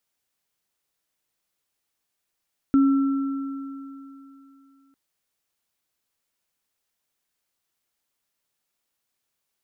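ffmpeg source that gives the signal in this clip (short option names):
-f lavfi -i "aevalsrc='0.224*pow(10,-3*t/2.92)*sin(2*PI*274*t)+0.0299*pow(10,-3*t/3.51)*sin(2*PI*1340*t)':d=2.2:s=44100"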